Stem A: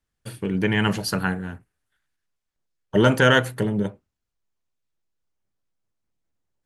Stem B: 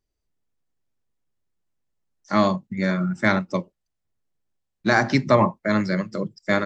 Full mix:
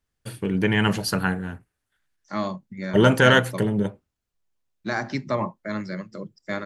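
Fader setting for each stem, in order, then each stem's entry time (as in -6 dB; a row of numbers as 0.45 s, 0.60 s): +0.5 dB, -8.5 dB; 0.00 s, 0.00 s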